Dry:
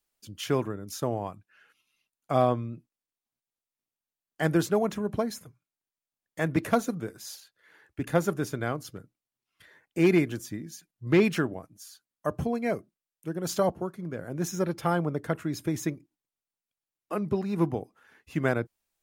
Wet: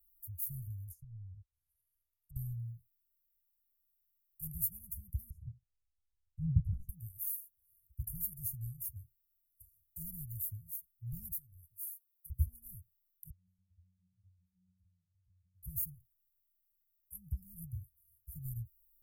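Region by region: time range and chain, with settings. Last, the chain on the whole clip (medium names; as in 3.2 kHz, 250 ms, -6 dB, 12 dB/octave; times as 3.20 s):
0.88–2.36 s: low-pass that closes with the level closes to 950 Hz, closed at -29.5 dBFS + treble shelf 5.7 kHz -9.5 dB + compression 2:1, threshold -38 dBFS
5.30–6.89 s: low-pass 1.7 kHz + resonant low shelf 210 Hz +9 dB, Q 3
8.37–10.03 s: brick-wall FIR band-stop 1.4–3.2 kHz + peaking EQ 4.5 kHz +11.5 dB 1.1 oct
11.31–12.30 s: doubling 14 ms -13 dB + compression 4:1, threshold -31 dBFS + bass shelf 480 Hz -11.5 dB
13.30–15.63 s: compression, threshold -37 dBFS + pitch-class resonator F#, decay 0.62 s
whole clip: inverse Chebyshev band-stop 300–3900 Hz, stop band 70 dB; treble shelf 10 kHz +6.5 dB; comb 1.5 ms, depth 81%; trim +9 dB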